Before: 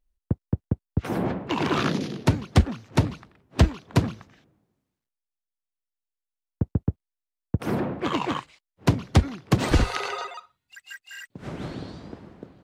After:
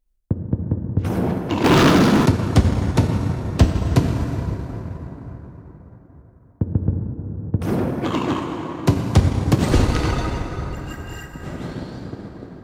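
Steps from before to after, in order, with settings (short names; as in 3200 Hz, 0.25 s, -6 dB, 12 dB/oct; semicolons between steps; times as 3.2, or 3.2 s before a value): plate-style reverb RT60 4.8 s, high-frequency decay 0.5×, DRR 0.5 dB; transient shaper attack 0 dB, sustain -4 dB; tilt shelf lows +4.5 dB, about 1200 Hz; 1.64–2.26 sample leveller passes 3; high shelf 3600 Hz +10 dB; gain -1 dB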